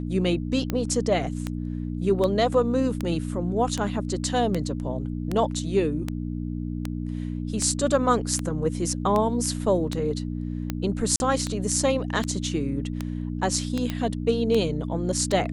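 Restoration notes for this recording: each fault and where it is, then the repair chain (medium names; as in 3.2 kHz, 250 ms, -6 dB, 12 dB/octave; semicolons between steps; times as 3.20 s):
hum 60 Hz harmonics 5 -30 dBFS
tick 78 rpm -13 dBFS
11.16–11.20 s: dropout 41 ms
13.90 s: pop -14 dBFS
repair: de-click; de-hum 60 Hz, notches 5; interpolate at 11.16 s, 41 ms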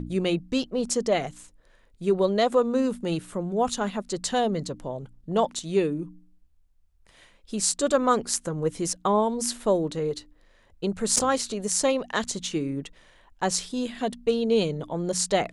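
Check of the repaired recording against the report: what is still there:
nothing left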